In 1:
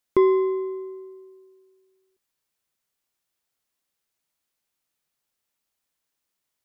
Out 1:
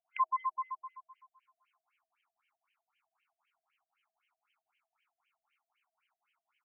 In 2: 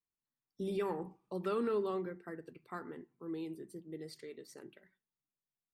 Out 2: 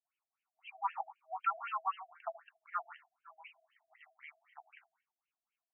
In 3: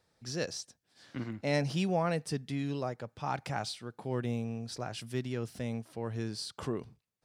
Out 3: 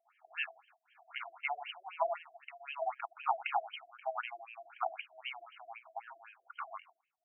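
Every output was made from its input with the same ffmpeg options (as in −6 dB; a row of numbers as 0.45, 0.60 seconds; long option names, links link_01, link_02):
-filter_complex "[0:a]afftfilt=real='re*(1-between(b*sr/4096,110,640))':imag='im*(1-between(b*sr/4096,110,640))':win_size=4096:overlap=0.75,asplit=2[link_01][link_02];[link_02]asoftclip=type=hard:threshold=-34.5dB,volume=-12dB[link_03];[link_01][link_03]amix=inputs=2:normalize=0,asubboost=boost=10:cutoff=110,acompressor=threshold=-39dB:ratio=3,superequalizer=11b=0.316:14b=0.562:16b=2.82,asplit=2[link_04][link_05];[link_05]aecho=0:1:76:0.178[link_06];[link_04][link_06]amix=inputs=2:normalize=0,afftfilt=real='re*between(b*sr/1024,470*pow(2300/470,0.5+0.5*sin(2*PI*3.9*pts/sr))/1.41,470*pow(2300/470,0.5+0.5*sin(2*PI*3.9*pts/sr))*1.41)':imag='im*between(b*sr/1024,470*pow(2300/470,0.5+0.5*sin(2*PI*3.9*pts/sr))/1.41,470*pow(2300/470,0.5+0.5*sin(2*PI*3.9*pts/sr))*1.41)':win_size=1024:overlap=0.75,volume=13dB"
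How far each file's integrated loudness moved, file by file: −12.5, +0.5, −4.5 LU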